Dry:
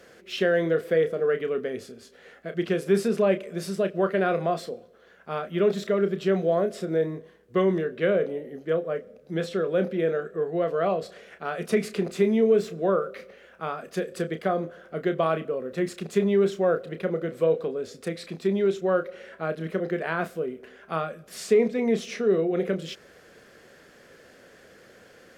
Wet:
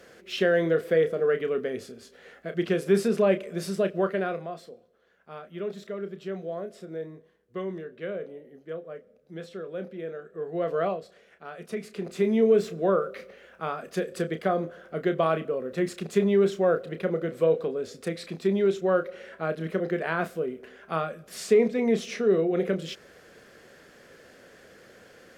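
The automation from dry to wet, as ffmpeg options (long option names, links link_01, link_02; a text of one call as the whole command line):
ffmpeg -i in.wav -af "volume=20.5dB,afade=type=out:start_time=3.9:duration=0.57:silence=0.281838,afade=type=in:start_time=10.27:duration=0.52:silence=0.298538,afade=type=out:start_time=10.79:duration=0.23:silence=0.334965,afade=type=in:start_time=11.9:duration=0.53:silence=0.316228" out.wav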